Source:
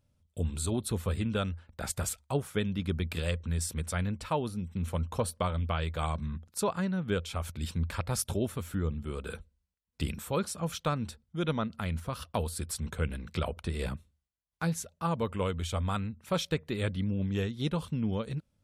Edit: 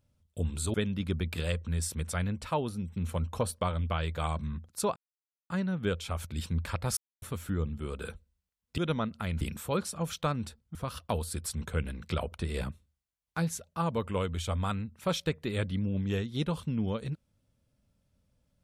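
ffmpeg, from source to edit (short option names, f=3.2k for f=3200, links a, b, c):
-filter_complex "[0:a]asplit=8[a][b][c][d][e][f][g][h];[a]atrim=end=0.742[i];[b]atrim=start=2.528:end=6.75,asetpts=PTS-STARTPTS,afade=t=out:st=4.218:d=0.004:c=hsin,apad=pad_dur=0.54[j];[c]atrim=start=6.75:end=8.22,asetpts=PTS-STARTPTS,afade=t=in:d=0.004:c=hsin,afade=t=out:st=1.466:d=0.004:c=hsin[k];[d]atrim=start=8.22:end=8.47,asetpts=PTS-STARTPTS,volume=0[l];[e]atrim=start=8.47:end=10.032,asetpts=PTS-STARTPTS,afade=t=in:d=0.004:c=hsin[m];[f]atrim=start=11.368:end=12.002[n];[g]atrim=start=10.028:end=11.372[o];[h]atrim=start=11.998[p];[j][k][l][m]concat=n=4:v=0:a=1[q];[i][q]acrossfade=d=0.004:c1=hsin:c2=hsin[r];[r][n]acrossfade=d=0.004:c1=hsin:c2=hsin[s];[s][o]acrossfade=d=0.004:c1=hsin:c2=hsin[t];[t][p]acrossfade=d=0.004:c1=hsin:c2=hsin"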